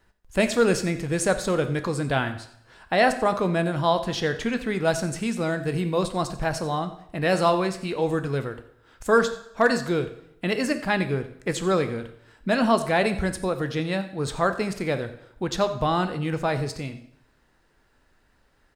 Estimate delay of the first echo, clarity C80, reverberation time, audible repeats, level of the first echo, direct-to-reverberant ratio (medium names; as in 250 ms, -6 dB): 90 ms, 14.0 dB, 0.75 s, 1, -18.5 dB, 9.0 dB